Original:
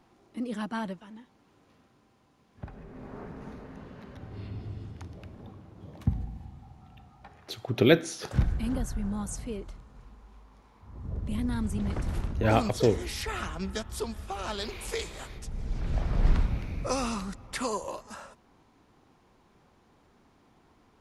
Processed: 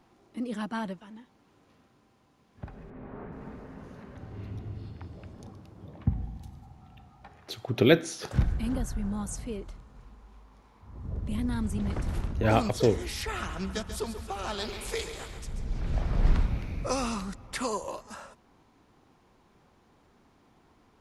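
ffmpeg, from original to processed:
-filter_complex "[0:a]asettb=1/sr,asplit=3[s0][s1][s2];[s0]atrim=end=2.904[s3];[s1]atrim=start=2.9:end=6.72,asetpts=PTS-STARTPTS,afade=t=in:d=0.004:c=qsin,afade=t=out:st=3.816:d=0.004:c=qsin,acrossover=split=3300[s4][s5];[s5]adelay=420[s6];[s4][s6]amix=inputs=2:normalize=0,atrim=end_sample=168462[s7];[s2]atrim=start=6.716[s8];[s3][s7]acrossfade=d=0.004:c1=hsin:c2=qsin[s9];[s9][s8]acrossfade=d=0.004:c1=qsin:c2=hsin,asettb=1/sr,asplit=3[s10][s11][s12];[s10]atrim=end=13.354[s13];[s11]atrim=start=13.35:end=15.64,asetpts=PTS-STARTPTS,afade=t=in:d=0.004:c=qsin,afade=t=out:st=2.286:d=0.004:c=qsin,aecho=1:1:137|274|411|548|685:0.316|0.152|0.0729|0.035|0.0168,atrim=end_sample=100989[s14];[s12]atrim=start=15.636[s15];[s13][s14]acrossfade=d=0.004:c1=hsin:c2=qsin[s16];[s16][s15]acrossfade=d=0.004:c1=qsin:c2=hsin"

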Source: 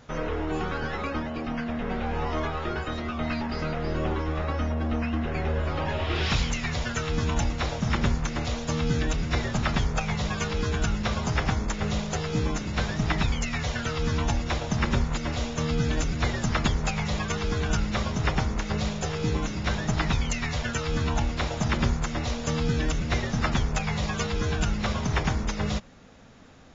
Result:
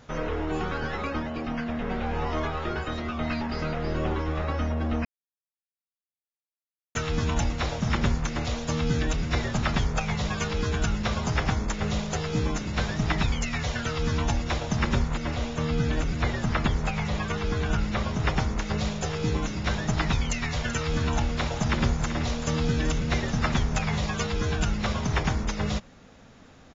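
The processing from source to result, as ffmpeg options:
-filter_complex "[0:a]asettb=1/sr,asplit=3[s0][s1][s2];[s0]atrim=end=15.094[s3];[s1]atrim=start=15.09:end=18.27,asetpts=PTS-STARTPTS,afade=t=in:d=0.004:c=qsin,afade=t=out:st=3.176:d=0.004:c=qsin,acrossover=split=3300[s4][s5];[s5]acompressor=threshold=0.00631:ratio=4:attack=1:release=60[s6];[s4][s6]amix=inputs=2:normalize=0[s7];[s2]atrim=start=18.266[s8];[s3][s7]acrossfade=d=0.004:c1=hsin:c2=qsin[s9];[s9][s8]acrossfade=d=0.004:c1=qsin:c2=hsin,asplit=3[s10][s11][s12];[s10]afade=t=out:st=20.54:d=0.02[s13];[s11]aecho=1:1:383:0.266,afade=t=in:st=20.54:d=0.02,afade=t=out:st=23.98:d=0.02[s14];[s12]afade=t=in:st=23.98:d=0.02[s15];[s13][s14][s15]amix=inputs=3:normalize=0,asplit=3[s16][s17][s18];[s16]atrim=end=5.05,asetpts=PTS-STARTPTS,afade=t=out:st=5.046:d=0.004:c=hsin[s19];[s17]atrim=start=5.05:end=6.95,asetpts=PTS-STARTPTS,volume=0[s20];[s18]atrim=start=6.95,asetpts=PTS-STARTPTS,afade=t=in:d=0.004:c=hsin[s21];[s19][s20][s21]concat=n=3:v=0:a=1"

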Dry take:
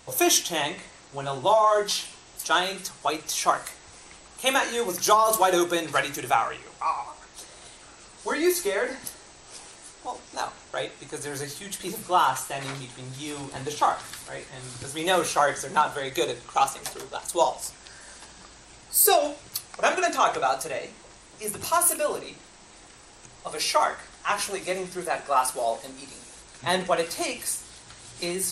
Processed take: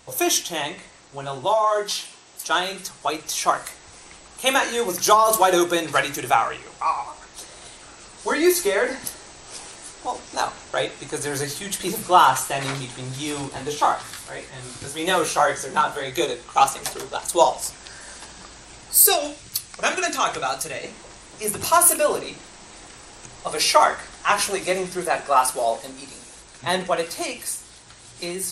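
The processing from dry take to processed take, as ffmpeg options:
-filter_complex "[0:a]asettb=1/sr,asplit=3[s0][s1][s2];[s0]atrim=end=1.454[s3];[s1]atrim=start=1.45:end=2.47,asetpts=PTS-STARTPTS,afade=t=in:d=0.004:c=qsin,afade=t=out:st=1.016:d=0.004:c=qsin,highpass=f=180:p=1[s4];[s2]atrim=start=2.466[s5];[s3][s4]acrossfade=d=0.004:c1=hsin:c2=qsin[s6];[s6][s5]acrossfade=d=0.004:c1=qsin:c2=hsin,asettb=1/sr,asplit=3[s7][s8][s9];[s7]atrim=end=13.484[s10];[s8]atrim=start=13.48:end=16.58,asetpts=PTS-STARTPTS,afade=t=in:d=0.004:c=qsin,afade=t=out:st=3.096:d=0.004:c=qsin,flanger=delay=16:depth=4.7:speed=1.9[s11];[s9]atrim=start=16.576[s12];[s10][s11]acrossfade=d=0.004:c1=hsin:c2=qsin[s13];[s13][s12]acrossfade=d=0.004:c1=qsin:c2=hsin,asettb=1/sr,asplit=3[s14][s15][s16];[s14]atrim=end=19.034[s17];[s15]atrim=start=19.03:end=20.84,asetpts=PTS-STARTPTS,afade=t=in:d=0.004:c=qsin,afade=t=out:st=1.806:d=0.004:c=qsin,equalizer=f=680:w=0.54:g=-8.5[s18];[s16]atrim=start=20.836[s19];[s17][s18]acrossfade=d=0.004:c1=hsin:c2=qsin[s20];[s20][s19]acrossfade=d=0.004:c1=qsin:c2=hsin,dynaudnorm=f=530:g=13:m=3.76"

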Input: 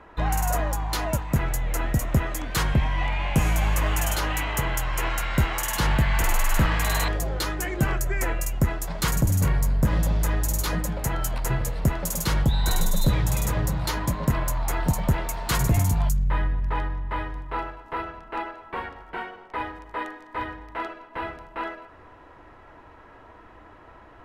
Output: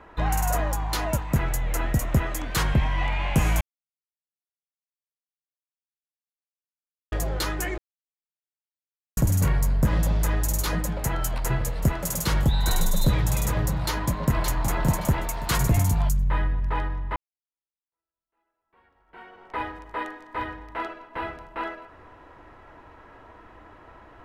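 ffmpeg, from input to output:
-filter_complex "[0:a]asplit=2[s0][s1];[s1]afade=t=in:st=11.24:d=0.01,afade=t=out:st=11.91:d=0.01,aecho=0:1:580|1160|1740|2320:0.211349|0.0845396|0.0338158|0.0135263[s2];[s0][s2]amix=inputs=2:normalize=0,asplit=2[s3][s4];[s4]afade=t=in:st=13.77:d=0.01,afade=t=out:st=14.62:d=0.01,aecho=0:1:570|1140|1710:0.562341|0.140585|0.0351463[s5];[s3][s5]amix=inputs=2:normalize=0,asplit=6[s6][s7][s8][s9][s10][s11];[s6]atrim=end=3.61,asetpts=PTS-STARTPTS,afade=t=out:st=3.606:d=0.004:c=hsin[s12];[s7]atrim=start=3.61:end=7.12,asetpts=PTS-STARTPTS,volume=0[s13];[s8]atrim=start=7.12:end=7.78,asetpts=PTS-STARTPTS,afade=t=in:d=0.004:c=hsin,afade=t=out:st=0.656:d=0.004:c=hsin[s14];[s9]atrim=start=7.78:end=9.17,asetpts=PTS-STARTPTS,volume=0[s15];[s10]atrim=start=9.17:end=17.16,asetpts=PTS-STARTPTS,afade=t=in:d=0.004:c=hsin,afade=t=out:st=7.986:d=0.004:c=hsin[s16];[s11]atrim=start=17.16,asetpts=PTS-STARTPTS,afade=t=in:d=2.33:c=exp[s17];[s12][s13][s14][s15][s16][s17]concat=n=6:v=0:a=1"

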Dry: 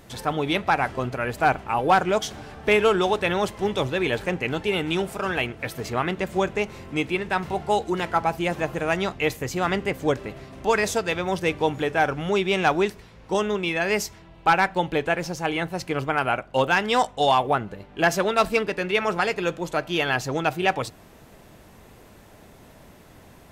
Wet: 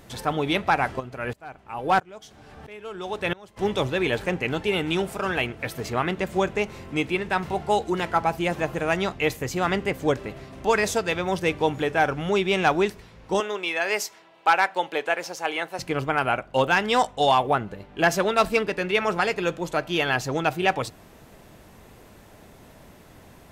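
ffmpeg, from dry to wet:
-filter_complex "[0:a]asplit=3[s0][s1][s2];[s0]afade=t=out:st=0.99:d=0.02[s3];[s1]aeval=exprs='val(0)*pow(10,-26*if(lt(mod(-1.5*n/s,1),2*abs(-1.5)/1000),1-mod(-1.5*n/s,1)/(2*abs(-1.5)/1000),(mod(-1.5*n/s,1)-2*abs(-1.5)/1000)/(1-2*abs(-1.5)/1000))/20)':c=same,afade=t=in:st=0.99:d=0.02,afade=t=out:st=3.56:d=0.02[s4];[s2]afade=t=in:st=3.56:d=0.02[s5];[s3][s4][s5]amix=inputs=3:normalize=0,asettb=1/sr,asplit=3[s6][s7][s8];[s6]atrim=end=13.404[s9];[s7]atrim=start=13.4:end=15.79,asetpts=PTS-STARTPTS,afade=t=in:d=0.004:c=qsin,afade=t=out:st=2.386:d=0.004:c=qsin,highpass=470[s10];[s8]atrim=start=15.786[s11];[s9][s10]acrossfade=d=0.004:c1=hsin:c2=qsin[s12];[s12][s11]acrossfade=d=0.004:c1=qsin:c2=hsin"

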